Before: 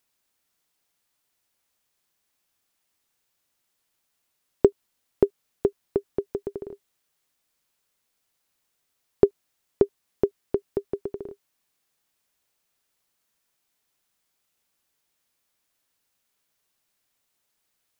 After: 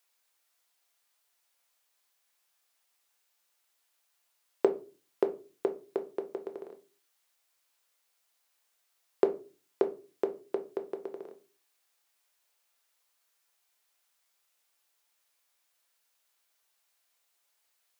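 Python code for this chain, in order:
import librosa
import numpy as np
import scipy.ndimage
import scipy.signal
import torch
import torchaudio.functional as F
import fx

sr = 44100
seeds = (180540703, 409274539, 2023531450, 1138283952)

y = scipy.signal.sosfilt(scipy.signal.butter(2, 580.0, 'highpass', fs=sr, output='sos'), x)
y = fx.room_shoebox(y, sr, seeds[0], volume_m3=170.0, walls='furnished', distance_m=0.8)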